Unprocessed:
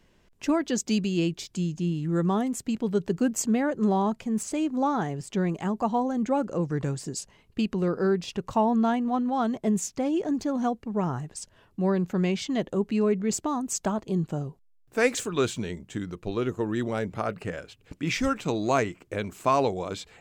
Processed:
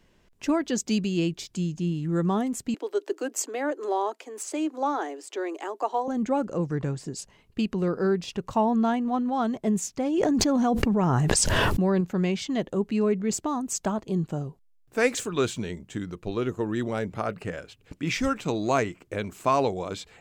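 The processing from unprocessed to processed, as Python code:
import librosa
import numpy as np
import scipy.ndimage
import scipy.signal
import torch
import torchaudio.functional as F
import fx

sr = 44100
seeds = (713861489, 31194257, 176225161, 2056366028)

y = fx.steep_highpass(x, sr, hz=290.0, slope=72, at=(2.74, 6.08))
y = fx.high_shelf(y, sr, hz=6100.0, db=-9.5, at=(6.75, 7.19))
y = fx.env_flatten(y, sr, amount_pct=100, at=(10.18, 12.01))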